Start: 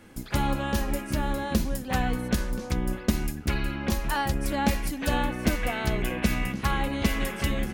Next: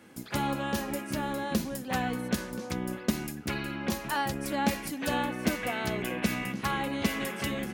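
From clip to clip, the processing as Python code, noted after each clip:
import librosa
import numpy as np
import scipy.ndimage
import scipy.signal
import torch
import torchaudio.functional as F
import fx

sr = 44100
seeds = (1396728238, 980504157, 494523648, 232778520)

y = scipy.signal.sosfilt(scipy.signal.butter(2, 140.0, 'highpass', fs=sr, output='sos'), x)
y = y * 10.0 ** (-2.0 / 20.0)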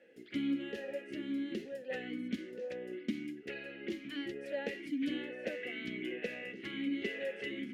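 y = fx.vowel_sweep(x, sr, vowels='e-i', hz=1.1)
y = y * 10.0 ** (3.5 / 20.0)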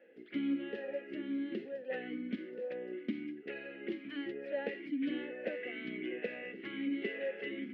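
y = scipy.signal.sosfilt(scipy.signal.bessel(2, 250.0, 'highpass', norm='mag', fs=sr, output='sos'), x)
y = fx.air_absorb(y, sr, metres=390.0)
y = y * 10.0 ** (3.0 / 20.0)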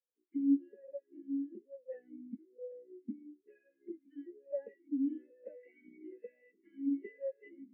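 y = fx.spectral_expand(x, sr, expansion=2.5)
y = y * 10.0 ** (3.0 / 20.0)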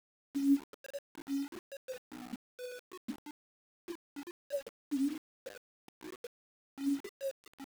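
y = fx.quant_dither(x, sr, seeds[0], bits=8, dither='none')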